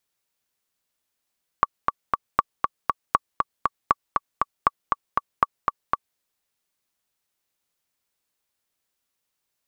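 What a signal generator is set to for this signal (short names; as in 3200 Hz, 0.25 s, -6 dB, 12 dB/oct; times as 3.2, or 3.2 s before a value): metronome 237 bpm, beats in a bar 3, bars 6, 1140 Hz, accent 3.5 dB -3 dBFS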